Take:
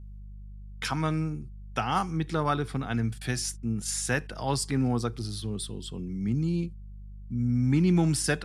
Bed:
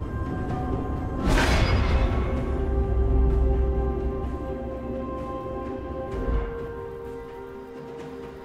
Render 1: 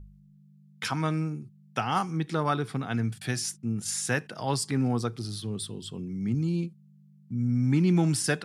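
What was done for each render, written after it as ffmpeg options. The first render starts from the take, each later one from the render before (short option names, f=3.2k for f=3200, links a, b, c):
-af "bandreject=f=50:t=h:w=4,bandreject=f=100:t=h:w=4"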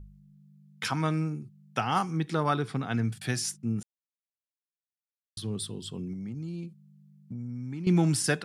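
-filter_complex "[0:a]asettb=1/sr,asplit=3[a][b][c];[a]atrim=end=2.624[d];[b]atrim=start=2.62:end=3.05,asetpts=PTS-STARTPTS,afade=t=in:d=0.004:c=qsin,afade=t=out:st=0.426:d=0.004:c=qsin,lowpass=9.7k[e];[c]atrim=start=3.046[f];[d][e]acrossfade=d=0.004:c1=hsin:c2=qsin[g];[g][f]acrossfade=d=0.004:c1=qsin:c2=hsin,asettb=1/sr,asplit=3[h][i][j];[h]atrim=end=6.134[k];[i]atrim=start=6.13:end=7.87,asetpts=PTS-STARTPTS,afade=t=in:d=0.004:c=qsin,afade=t=out:st=1.736:d=0.004:c=qsin,acompressor=threshold=-34dB:ratio=6:attack=3.2:release=140:knee=1:detection=peak[l];[j]atrim=start=7.866[m];[k][l]acrossfade=d=0.004:c1=hsin:c2=qsin[n];[n][m]acrossfade=d=0.004:c1=qsin:c2=hsin,asplit=3[o][p][q];[o]atrim=end=3.83,asetpts=PTS-STARTPTS,afade=t=out:st=3.826:d=0.004:c=hsin[r];[p]atrim=start=3.83:end=5.37,asetpts=PTS-STARTPTS,volume=0[s];[q]atrim=start=5.37,asetpts=PTS-STARTPTS,afade=t=in:d=0.004:c=hsin[t];[r][s][t]concat=n=3:v=0:a=1"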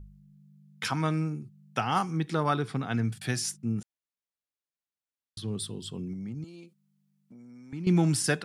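-filter_complex "[0:a]asettb=1/sr,asplit=3[a][b][c];[a]atrim=end=3.794[d];[b]atrim=start=3.79:end=5.48,asetpts=PTS-STARTPTS,afade=t=in:d=0.004:c=qsin,afade=t=out:st=1.686:d=0.004:c=qsin,highshelf=f=8k:g=-9[e];[c]atrim=start=5.476[f];[d][e]acrossfade=d=0.004:c1=hsin:c2=qsin[g];[g][f]acrossfade=d=0.004:c1=qsin:c2=hsin,asettb=1/sr,asplit=3[h][i][j];[h]atrim=end=6.444[k];[i]atrim=start=6.44:end=7.73,asetpts=PTS-STARTPTS,afade=t=in:d=0.004:c=qsin,afade=t=out:st=1.286:d=0.004:c=qsin,highpass=410[l];[j]atrim=start=7.726[m];[k][l]acrossfade=d=0.004:c1=hsin:c2=qsin[n];[n][m]acrossfade=d=0.004:c1=qsin:c2=hsin"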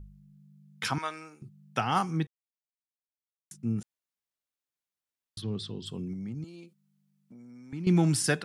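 -filter_complex "[0:a]asettb=1/sr,asplit=3[a][b][c];[a]atrim=end=0.984[d];[b]atrim=start=0.98:end=1.42,asetpts=PTS-STARTPTS,afade=t=in:d=0.004:c=qsin,afade=t=out:st=0.436:d=0.004:c=qsin,highpass=770[e];[c]atrim=start=1.416[f];[d][e]acrossfade=d=0.004:c1=hsin:c2=qsin[g];[g][f]acrossfade=d=0.004:c1=qsin:c2=hsin,asplit=3[h][i][j];[h]afade=t=out:st=5.41:d=0.02[k];[i]lowpass=f=5.8k:w=0.5412,lowpass=f=5.8k:w=1.3066,afade=t=in:st=5.41:d=0.02,afade=t=out:st=5.85:d=0.02[l];[j]afade=t=in:st=5.85:d=0.02[m];[k][l][m]amix=inputs=3:normalize=0,asplit=3[n][o][p];[n]atrim=end=2.27,asetpts=PTS-STARTPTS,afade=t=out:st=2.266:d=0.004:c=hsin[q];[o]atrim=start=2.27:end=3.51,asetpts=PTS-STARTPTS,volume=0[r];[p]atrim=start=3.51,asetpts=PTS-STARTPTS,afade=t=in:d=0.004:c=hsin[s];[q][r][s]concat=n=3:v=0:a=1"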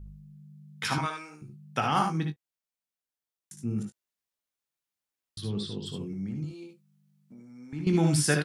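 -filter_complex "[0:a]asplit=2[a][b];[b]adelay=20,volume=-9dB[c];[a][c]amix=inputs=2:normalize=0,aecho=1:1:59|73:0.376|0.473"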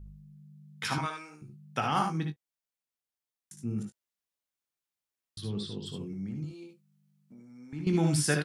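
-af "volume=-2.5dB"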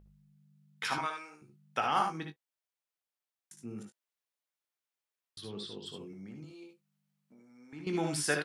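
-af "bass=f=250:g=-15,treble=f=4k:g=-4"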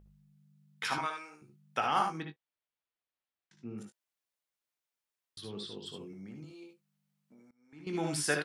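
-filter_complex "[0:a]asettb=1/sr,asplit=3[a][b][c];[a]atrim=end=2.224[d];[b]atrim=start=2.22:end=3.78,asetpts=PTS-STARTPTS,afade=t=in:d=0.004:c=qsin,afade=t=out:st=1.556:d=0.004:c=qsin,lowpass=f=4.2k:w=0.5412,lowpass=f=4.2k:w=1.3066[e];[c]atrim=start=3.776[f];[d][e]acrossfade=d=0.004:c1=hsin:c2=qsin[g];[g][f]acrossfade=d=0.004:c1=qsin:c2=hsin,asplit=2[h][i];[h]atrim=end=7.51,asetpts=PTS-STARTPTS,afade=t=out:st=7.506:d=0.004:c=hsin:silence=0.0668344[j];[i]atrim=start=7.51,asetpts=PTS-STARTPTS,afade=t=in:d=0.6:silence=0.0668344[k];[j][k]concat=n=2:v=0:a=1"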